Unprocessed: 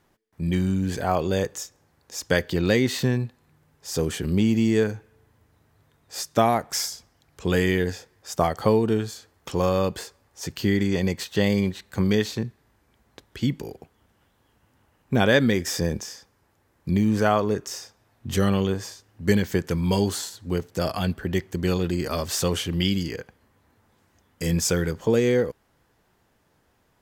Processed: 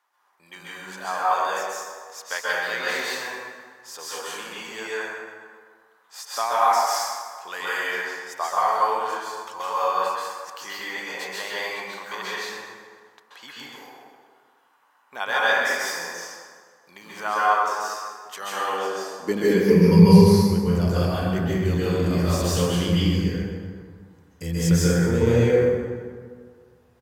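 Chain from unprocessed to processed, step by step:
0:19.48–0:20.53: EQ curve with evenly spaced ripples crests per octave 0.86, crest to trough 16 dB
high-pass filter sweep 1,000 Hz → 68 Hz, 0:18.39–0:20.45
0:09.73–0:10.50: all-pass dispersion highs, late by 75 ms, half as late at 1,400 Hz
on a send: repeating echo 127 ms, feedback 55%, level −14.5 dB
on the sum: dense smooth reverb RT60 1.8 s, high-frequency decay 0.45×, pre-delay 120 ms, DRR −8.5 dB
level −7.5 dB

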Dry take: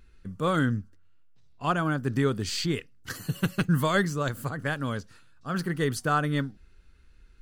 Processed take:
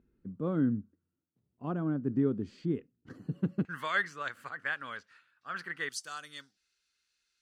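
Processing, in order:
resonant band-pass 260 Hz, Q 1.5, from 0:03.65 1,900 Hz, from 0:05.89 5,700 Hz

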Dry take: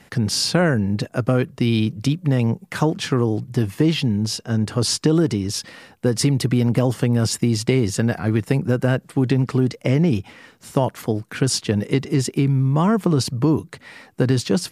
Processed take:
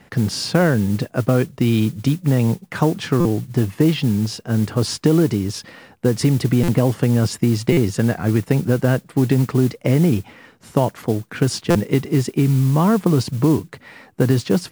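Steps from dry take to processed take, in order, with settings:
high-shelf EQ 3,100 Hz −8.5 dB
noise that follows the level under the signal 23 dB
buffer that repeats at 0:03.20/0:06.63/0:07.72/0:11.70, samples 256, times 8
level +2 dB

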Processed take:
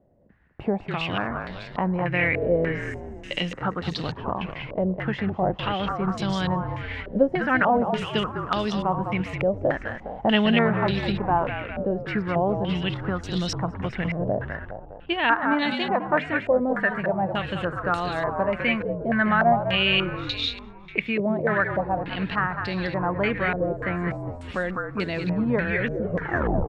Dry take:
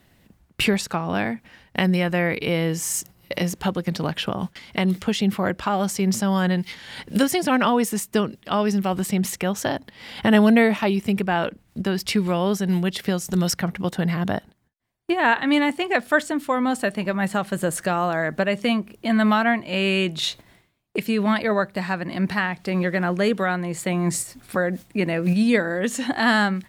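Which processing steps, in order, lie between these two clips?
turntable brake at the end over 0.82 s
echo with shifted repeats 204 ms, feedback 60%, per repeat −46 Hz, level −6.5 dB
low-pass on a step sequencer 3.4 Hz 570–4,000 Hz
level −6 dB

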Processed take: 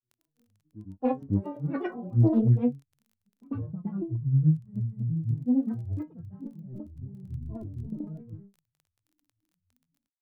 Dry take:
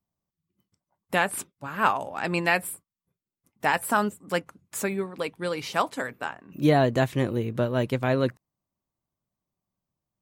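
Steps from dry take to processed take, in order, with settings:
low-shelf EQ 310 Hz +7 dB
echo ahead of the sound 233 ms −22.5 dB
low-pass filter sweep 450 Hz → 160 Hz, 0:00.56–0:04.44
compressor whose output falls as the input rises −20 dBFS, ratio −0.5
stiff-string resonator 180 Hz, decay 0.39 s, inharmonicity 0.008
surface crackle 15 per second −57 dBFS
high-shelf EQ 10,000 Hz +11.5 dB
granular cloud 223 ms, grains 9.1 per second, spray 227 ms, pitch spread up and down by 12 semitones
highs frequency-modulated by the lows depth 0.29 ms
level +8 dB

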